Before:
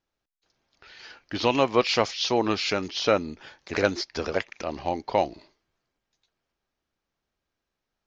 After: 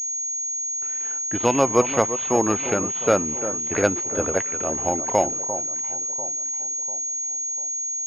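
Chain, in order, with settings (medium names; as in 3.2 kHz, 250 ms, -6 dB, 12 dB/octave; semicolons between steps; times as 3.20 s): dead-time distortion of 0.086 ms; high-pass 46 Hz; distance through air 130 m; echo whose repeats swap between lows and highs 347 ms, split 1.3 kHz, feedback 63%, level -11 dB; class-D stage that switches slowly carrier 6.6 kHz; trim +3.5 dB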